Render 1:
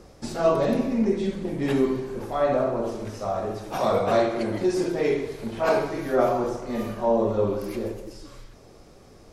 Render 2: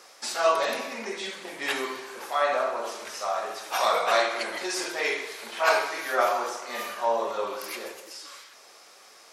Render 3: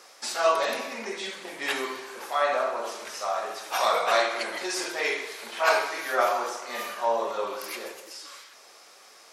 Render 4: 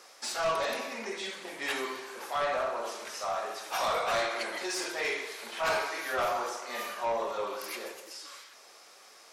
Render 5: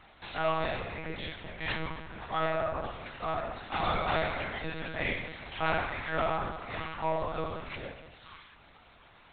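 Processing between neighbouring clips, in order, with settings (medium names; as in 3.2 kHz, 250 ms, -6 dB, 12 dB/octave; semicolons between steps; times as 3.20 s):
high-pass 1.2 kHz 12 dB/octave; trim +8.5 dB
bass shelf 120 Hz -4 dB
saturation -21.5 dBFS, distortion -11 dB; trim -2.5 dB
monotone LPC vocoder at 8 kHz 160 Hz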